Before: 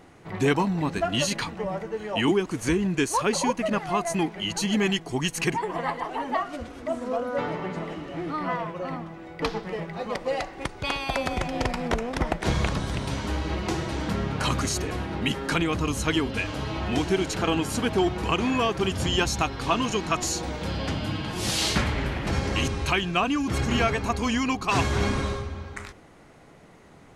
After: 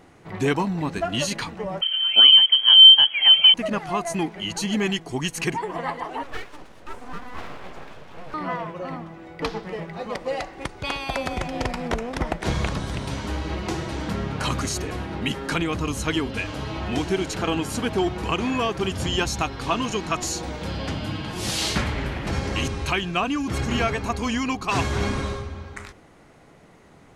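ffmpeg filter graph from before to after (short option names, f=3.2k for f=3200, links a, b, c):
-filter_complex "[0:a]asettb=1/sr,asplit=3[a][b][c];[a]atrim=end=1.814[d];[b]atrim=start=1.81:end=3.54,asetpts=PTS-STARTPTS,afade=t=in:d=0.004:c=qsin,afade=t=out:st=1.726:d=0.004:c=qsin,lowshelf=f=310:t=q:w=3:g=11.5,lowpass=f=2.8k:t=q:w=0.5098,lowpass=f=2.8k:t=q:w=0.6013,lowpass=f=2.8k:t=q:w=0.9,lowpass=f=2.8k:t=q:w=2.563,afreqshift=-3300[e];[c]atrim=start=3.536[f];[d][e]acrossfade=d=0.004:c1=hsin:c2=qsin[g];[g][f]acrossfade=d=0.004:c1=qsin:c2=hsin,asettb=1/sr,asplit=3[h][i][j];[h]atrim=end=6.234[k];[i]atrim=start=6.23:end=8.34,asetpts=PTS-STARTPTS,afade=t=in:d=0.004:c=qsin,afade=t=out:st=2.106:d=0.004:c=qsin,flanger=delay=5.1:depth=6.5:regen=-81:speed=1:shape=sinusoidal,aeval=exprs='abs(val(0))':c=same[l];[j]atrim=start=8.336[m];[k][l]acrossfade=d=0.004:c1=hsin:c2=qsin[n];[n][m]acrossfade=d=0.004:c1=qsin:c2=hsin"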